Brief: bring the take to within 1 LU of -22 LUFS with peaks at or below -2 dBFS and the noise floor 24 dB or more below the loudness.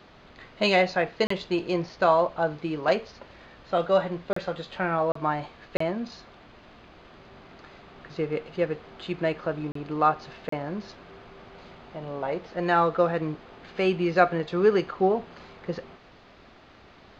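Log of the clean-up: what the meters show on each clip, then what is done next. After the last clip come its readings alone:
dropouts 6; longest dropout 34 ms; loudness -26.5 LUFS; peak -4.5 dBFS; loudness target -22.0 LUFS
-> interpolate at 1.27/4.33/5.12/5.77/9.72/10.49, 34 ms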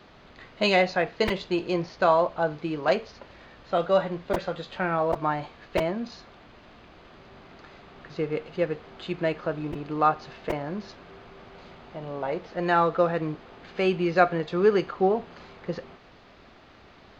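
dropouts 0; loudness -26.5 LUFS; peak -4.5 dBFS; loudness target -22.0 LUFS
-> gain +4.5 dB; limiter -2 dBFS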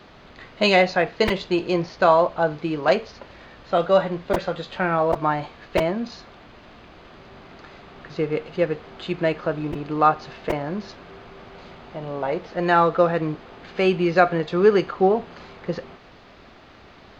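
loudness -22.0 LUFS; peak -2.0 dBFS; noise floor -48 dBFS

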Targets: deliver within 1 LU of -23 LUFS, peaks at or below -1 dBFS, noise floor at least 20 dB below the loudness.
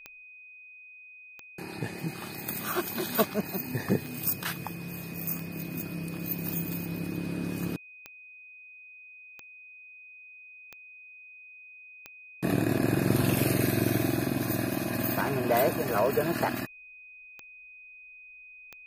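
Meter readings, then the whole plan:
clicks 15; steady tone 2500 Hz; tone level -47 dBFS; loudness -30.0 LUFS; peak -9.0 dBFS; loudness target -23.0 LUFS
-> de-click; notch 2500 Hz, Q 30; gain +7 dB

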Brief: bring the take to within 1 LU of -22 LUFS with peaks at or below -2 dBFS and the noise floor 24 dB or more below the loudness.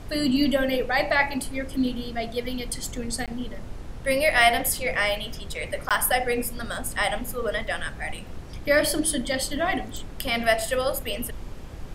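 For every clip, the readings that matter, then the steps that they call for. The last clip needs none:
dropouts 2; longest dropout 17 ms; noise floor -38 dBFS; noise floor target -49 dBFS; loudness -25.0 LUFS; peak -6.0 dBFS; loudness target -22.0 LUFS
-> interpolate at 3.26/5.89, 17 ms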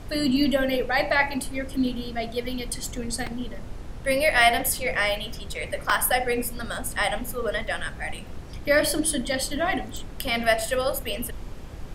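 dropouts 0; noise floor -38 dBFS; noise floor target -49 dBFS
-> noise print and reduce 11 dB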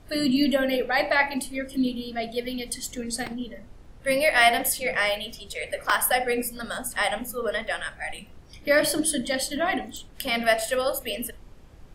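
noise floor -48 dBFS; noise floor target -49 dBFS
-> noise print and reduce 6 dB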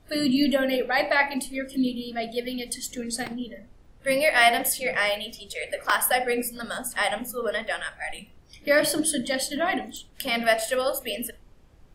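noise floor -54 dBFS; loudness -25.0 LUFS; peak -6.0 dBFS; loudness target -22.0 LUFS
-> gain +3 dB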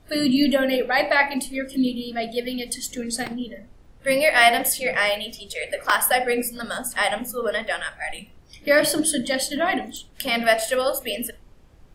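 loudness -22.0 LUFS; peak -3.0 dBFS; noise floor -51 dBFS

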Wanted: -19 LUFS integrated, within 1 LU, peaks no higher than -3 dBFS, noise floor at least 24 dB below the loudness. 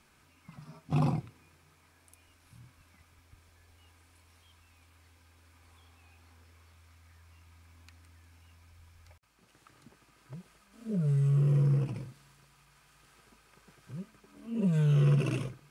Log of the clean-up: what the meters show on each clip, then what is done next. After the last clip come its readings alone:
loudness -28.5 LUFS; peak -16.5 dBFS; loudness target -19.0 LUFS
-> gain +9.5 dB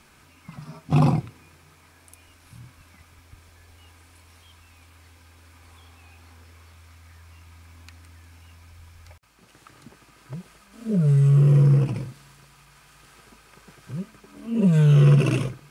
loudness -19.0 LUFS; peak -7.0 dBFS; noise floor -55 dBFS

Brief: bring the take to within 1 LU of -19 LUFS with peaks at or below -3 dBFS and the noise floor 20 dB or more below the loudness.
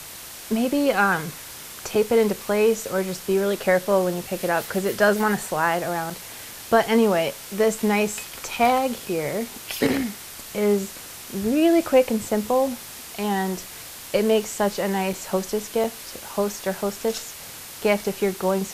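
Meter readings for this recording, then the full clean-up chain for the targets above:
dropouts 5; longest dropout 3.6 ms; noise floor -39 dBFS; noise floor target -43 dBFS; loudness -23.0 LUFS; peak -5.0 dBFS; loudness target -19.0 LUFS
-> interpolate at 1.95/6.1/15.13/15.84/18.04, 3.6 ms; denoiser 6 dB, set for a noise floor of -39 dBFS; gain +4 dB; limiter -3 dBFS

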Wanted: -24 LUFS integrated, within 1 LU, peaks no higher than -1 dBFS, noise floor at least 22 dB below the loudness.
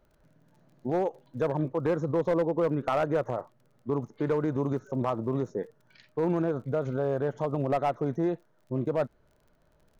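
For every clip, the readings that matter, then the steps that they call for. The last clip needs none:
ticks 37/s; loudness -30.0 LUFS; peak -20.0 dBFS; loudness target -24.0 LUFS
-> de-click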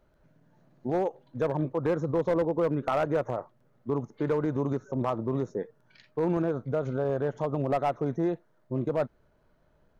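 ticks 0.30/s; loudness -30.0 LUFS; peak -18.0 dBFS; loudness target -24.0 LUFS
-> gain +6 dB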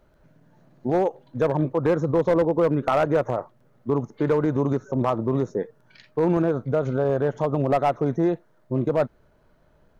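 loudness -24.0 LUFS; peak -12.0 dBFS; noise floor -60 dBFS

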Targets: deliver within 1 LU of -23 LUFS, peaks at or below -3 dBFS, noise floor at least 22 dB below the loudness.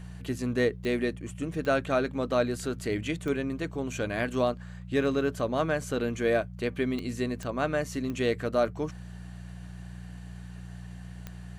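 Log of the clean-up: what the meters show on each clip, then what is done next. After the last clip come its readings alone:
clicks 7; hum 60 Hz; harmonics up to 180 Hz; hum level -39 dBFS; loudness -29.5 LUFS; peak -13.0 dBFS; loudness target -23.0 LUFS
-> de-click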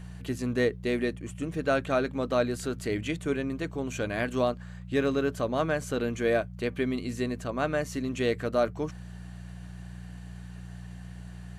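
clicks 0; hum 60 Hz; harmonics up to 180 Hz; hum level -39 dBFS
-> de-hum 60 Hz, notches 3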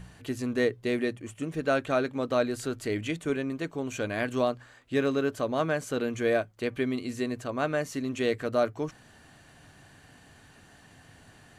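hum none; loudness -30.0 LUFS; peak -12.5 dBFS; loudness target -23.0 LUFS
-> gain +7 dB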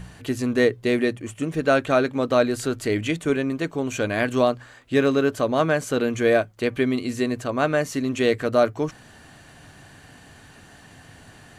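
loudness -23.0 LUFS; peak -5.5 dBFS; noise floor -49 dBFS

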